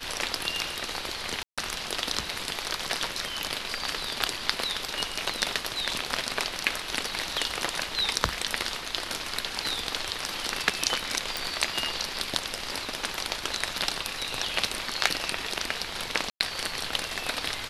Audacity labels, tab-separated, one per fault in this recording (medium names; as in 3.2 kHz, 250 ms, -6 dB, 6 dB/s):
1.430000	1.580000	dropout 146 ms
11.370000	11.370000	pop
16.300000	16.400000	dropout 103 ms